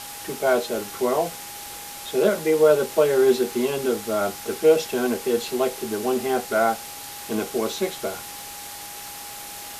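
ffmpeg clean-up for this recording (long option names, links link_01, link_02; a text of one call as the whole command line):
ffmpeg -i in.wav -af "adeclick=threshold=4,bandreject=frequency=820:width=30,afwtdn=0.016" out.wav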